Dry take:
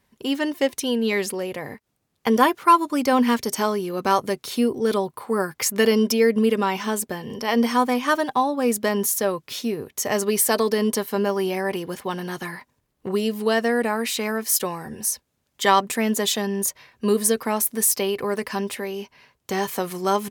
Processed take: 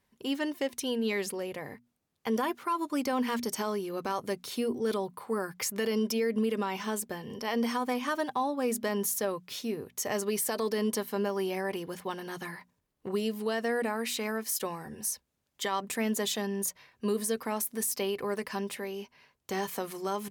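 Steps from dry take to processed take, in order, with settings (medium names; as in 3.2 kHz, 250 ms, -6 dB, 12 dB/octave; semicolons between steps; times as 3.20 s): hum notches 60/120/180/240 Hz; peak limiter -13.5 dBFS, peak gain reduction 10 dB; trim -7.5 dB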